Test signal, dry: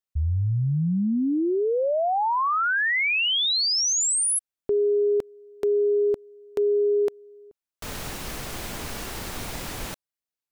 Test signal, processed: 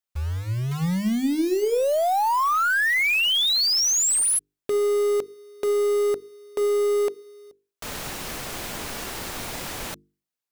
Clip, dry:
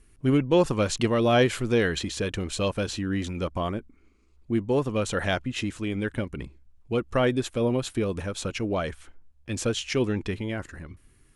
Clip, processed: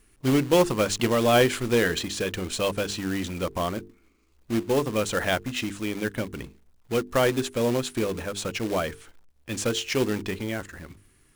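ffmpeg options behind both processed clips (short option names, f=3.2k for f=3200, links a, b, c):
-af "lowshelf=f=130:g=-7,acrusher=bits=3:mode=log:mix=0:aa=0.000001,bandreject=f=50:t=h:w=6,bandreject=f=100:t=h:w=6,bandreject=f=150:t=h:w=6,bandreject=f=200:t=h:w=6,bandreject=f=250:t=h:w=6,bandreject=f=300:t=h:w=6,bandreject=f=350:t=h:w=6,bandreject=f=400:t=h:w=6,bandreject=f=450:t=h:w=6,aeval=exprs='0.473*(cos(1*acos(clip(val(0)/0.473,-1,1)))-cos(1*PI/2))+0.00376*(cos(8*acos(clip(val(0)/0.473,-1,1)))-cos(8*PI/2))':c=same,volume=2dB"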